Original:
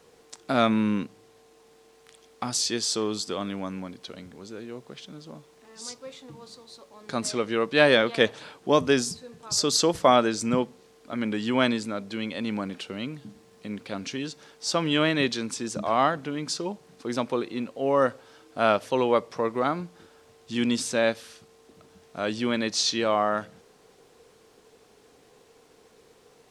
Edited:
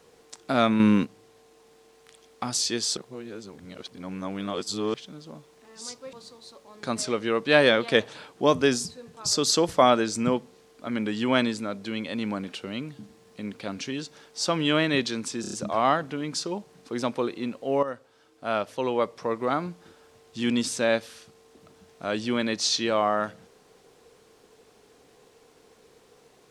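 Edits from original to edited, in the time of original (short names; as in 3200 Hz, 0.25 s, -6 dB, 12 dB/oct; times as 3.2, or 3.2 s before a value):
0.8–1.05 gain +6 dB
2.97–4.94 reverse
6.13–6.39 cut
15.67 stutter 0.03 s, 5 plays
17.97–19.8 fade in, from -12.5 dB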